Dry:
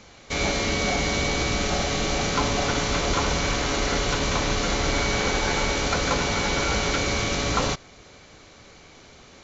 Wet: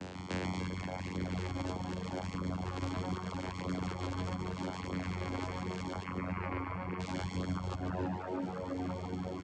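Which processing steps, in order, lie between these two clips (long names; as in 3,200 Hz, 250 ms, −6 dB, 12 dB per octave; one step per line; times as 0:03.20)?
0:06.03–0:07.00: high shelf with overshoot 2,600 Hz −12 dB, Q 3
channel vocoder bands 8, saw 91.5 Hz
tape delay 329 ms, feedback 81%, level −9 dB, low-pass 1,400 Hz
downward compressor 6 to 1, threshold −38 dBFS, peak gain reduction 17.5 dB
brickwall limiter −35.5 dBFS, peak gain reduction 8.5 dB
repeating echo 143 ms, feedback 59%, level −4 dB
reverb reduction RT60 1.9 s
level +8 dB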